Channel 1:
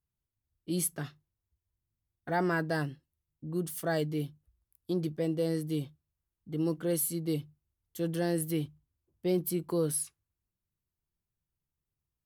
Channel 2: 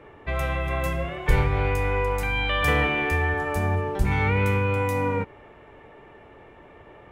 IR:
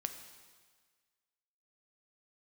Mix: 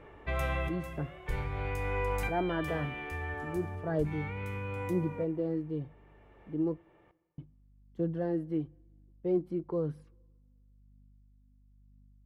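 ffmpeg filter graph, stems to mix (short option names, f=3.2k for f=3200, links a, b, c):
-filter_complex "[0:a]lowpass=1.1k,aeval=exprs='val(0)+0.001*(sin(2*PI*50*n/s)+sin(2*PI*2*50*n/s)/2+sin(2*PI*3*50*n/s)/3+sin(2*PI*4*50*n/s)/4+sin(2*PI*5*50*n/s)/5)':c=same,aphaser=in_gain=1:out_gain=1:delay=3.8:decay=0.38:speed=1:type=triangular,volume=-2.5dB,asplit=3[a][b][c];[a]atrim=end=6.78,asetpts=PTS-STARTPTS,afade=t=out:st=6.776:d=0.004:c=hsin[d];[b]atrim=start=6.78:end=7.38,asetpts=PTS-STARTPTS,volume=0[e];[c]atrim=start=7.38,asetpts=PTS-STARTPTS,afade=t=in:d=0.004:c=hsin[f];[d][e][f]concat=n=3:v=0:a=1,asplit=3[g][h][i];[h]volume=-20.5dB[j];[1:a]volume=-6.5dB,asplit=2[k][l];[l]volume=-16.5dB[m];[i]apad=whole_len=313603[n];[k][n]sidechaincompress=threshold=-52dB:ratio=3:attack=16:release=837[o];[2:a]atrim=start_sample=2205[p];[j][m]amix=inputs=2:normalize=0[q];[q][p]afir=irnorm=-1:irlink=0[r];[g][o][r]amix=inputs=3:normalize=0"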